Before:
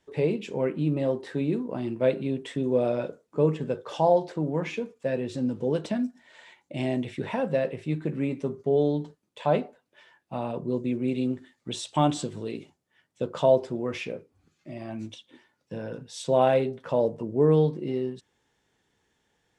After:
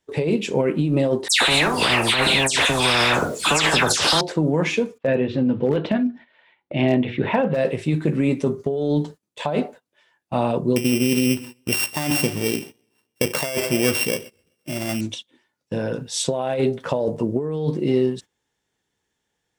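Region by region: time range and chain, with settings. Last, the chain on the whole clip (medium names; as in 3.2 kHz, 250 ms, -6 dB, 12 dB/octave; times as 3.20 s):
1.28–4.21 s: phase dispersion lows, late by 134 ms, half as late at 2.8 kHz + spectrum-flattening compressor 10:1
4.98–7.57 s: low-pass 3.2 kHz 24 dB/octave + hard clipper -18.5 dBFS + hum notches 60/120/180/240/300/360/420/480 Hz
10.76–15.01 s: sorted samples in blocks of 16 samples + modulated delay 128 ms, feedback 50%, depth 67 cents, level -21 dB
whole clip: gate -46 dBFS, range -16 dB; treble shelf 4.8 kHz +7 dB; compressor with a negative ratio -27 dBFS, ratio -1; trim +8 dB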